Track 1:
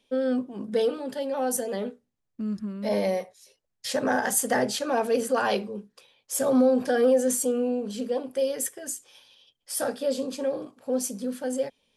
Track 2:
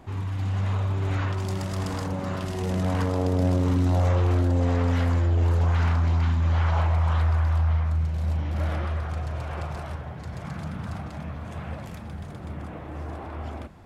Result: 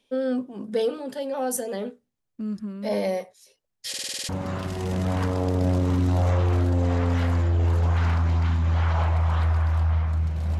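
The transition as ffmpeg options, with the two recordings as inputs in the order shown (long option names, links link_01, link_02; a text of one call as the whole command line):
ffmpeg -i cue0.wav -i cue1.wav -filter_complex "[0:a]apad=whole_dur=10.59,atrim=end=10.59,asplit=8[link_01][link_02][link_03][link_04][link_05][link_06][link_07][link_08];[link_01]atrim=end=3.942[link_09];[link_02]atrim=start=3.888:end=3.942[link_10];[link_03]atrim=start=3.888:end=3.942[link_11];[link_04]atrim=start=3.888:end=3.942[link_12];[link_05]atrim=start=3.888:end=3.942[link_13];[link_06]atrim=start=3.888:end=3.942[link_14];[link_07]atrim=start=3.888:end=3.942[link_15];[link_08]atrim=start=3.888:end=3.942[link_16];[1:a]atrim=start=2.068:end=8.37[link_17];[link_09][link_10]acrossfade=duration=0.004:curve1=hsin:curve2=hsin[link_18];[link_18][link_11]acrossfade=duration=0.004:curve1=hsin:curve2=hsin[link_19];[link_19][link_12]acrossfade=duration=0.004:curve1=hsin:curve2=hsin[link_20];[link_20][link_13]acrossfade=duration=0.004:curve1=hsin:curve2=hsin[link_21];[link_21][link_14]acrossfade=duration=0.004:curve1=hsin:curve2=hsin[link_22];[link_22][link_15]acrossfade=duration=0.004:curve1=hsin:curve2=hsin[link_23];[link_23][link_16]acrossfade=duration=0.004:curve1=hsin:curve2=hsin[link_24];[link_24][link_17]acrossfade=duration=0.004:curve1=hsin:curve2=hsin" out.wav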